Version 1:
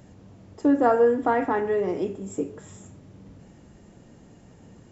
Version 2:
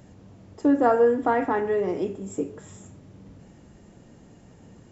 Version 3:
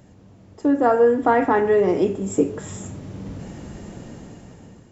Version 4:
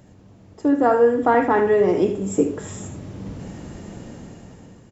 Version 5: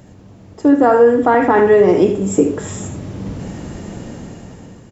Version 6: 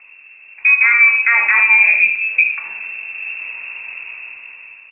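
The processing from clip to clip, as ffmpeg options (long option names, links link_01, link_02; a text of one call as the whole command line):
ffmpeg -i in.wav -af anull out.wav
ffmpeg -i in.wav -af "dynaudnorm=framelen=340:gausssize=7:maxgain=16.5dB" out.wav
ffmpeg -i in.wav -af "aecho=1:1:77:0.316" out.wav
ffmpeg -i in.wav -af "alimiter=level_in=8dB:limit=-1dB:release=50:level=0:latency=1,volume=-1dB" out.wav
ffmpeg -i in.wav -af "lowpass=frequency=2400:width_type=q:width=0.5098,lowpass=frequency=2400:width_type=q:width=0.6013,lowpass=frequency=2400:width_type=q:width=0.9,lowpass=frequency=2400:width_type=q:width=2.563,afreqshift=-2800,volume=-1dB" out.wav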